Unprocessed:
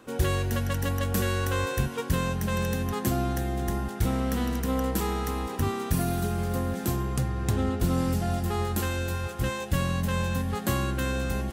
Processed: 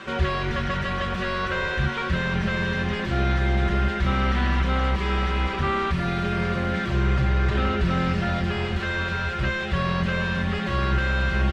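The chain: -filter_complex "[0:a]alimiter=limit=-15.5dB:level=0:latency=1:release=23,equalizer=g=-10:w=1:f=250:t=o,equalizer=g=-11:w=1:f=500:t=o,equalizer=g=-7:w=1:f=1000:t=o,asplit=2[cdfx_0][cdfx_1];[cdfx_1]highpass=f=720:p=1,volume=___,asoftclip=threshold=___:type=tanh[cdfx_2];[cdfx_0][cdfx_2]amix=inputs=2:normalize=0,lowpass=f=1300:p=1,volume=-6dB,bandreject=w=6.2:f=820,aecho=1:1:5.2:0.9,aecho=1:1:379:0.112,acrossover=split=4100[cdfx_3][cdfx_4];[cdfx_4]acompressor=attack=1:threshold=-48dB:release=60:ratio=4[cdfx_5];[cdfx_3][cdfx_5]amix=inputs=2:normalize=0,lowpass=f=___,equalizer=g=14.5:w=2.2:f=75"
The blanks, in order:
32dB, -15.5dB, 5300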